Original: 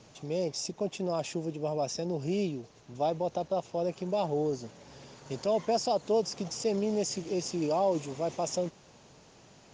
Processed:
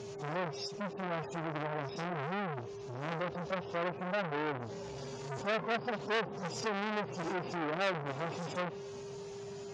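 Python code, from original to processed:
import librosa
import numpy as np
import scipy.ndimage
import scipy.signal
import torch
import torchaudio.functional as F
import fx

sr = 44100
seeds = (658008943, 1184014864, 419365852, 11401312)

p1 = fx.hpss_only(x, sr, part='harmonic')
p2 = fx.env_lowpass_down(p1, sr, base_hz=1300.0, full_db=-27.0)
p3 = fx.over_compress(p2, sr, threshold_db=-38.0, ratio=-0.5)
p4 = p2 + (p3 * 10.0 ** (0.5 / 20.0))
p5 = p4 + 10.0 ** (-42.0 / 20.0) * np.sin(2.0 * np.pi * 400.0 * np.arange(len(p4)) / sr)
y = fx.transformer_sat(p5, sr, knee_hz=2100.0)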